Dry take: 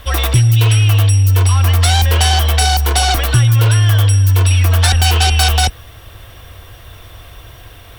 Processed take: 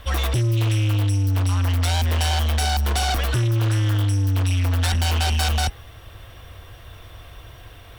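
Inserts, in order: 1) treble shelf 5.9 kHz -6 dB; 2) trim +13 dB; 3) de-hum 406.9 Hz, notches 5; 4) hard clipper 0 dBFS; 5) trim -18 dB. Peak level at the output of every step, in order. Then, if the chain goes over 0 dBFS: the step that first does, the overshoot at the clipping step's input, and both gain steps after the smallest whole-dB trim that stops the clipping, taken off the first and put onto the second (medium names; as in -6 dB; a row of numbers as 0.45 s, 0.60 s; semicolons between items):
-5.0 dBFS, +8.0 dBFS, +8.0 dBFS, 0.0 dBFS, -18.0 dBFS; step 2, 8.0 dB; step 2 +5 dB, step 5 -10 dB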